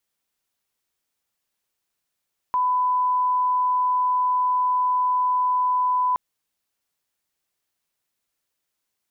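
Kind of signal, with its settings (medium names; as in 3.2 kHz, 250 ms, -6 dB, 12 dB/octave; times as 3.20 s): line-up tone -18 dBFS 3.62 s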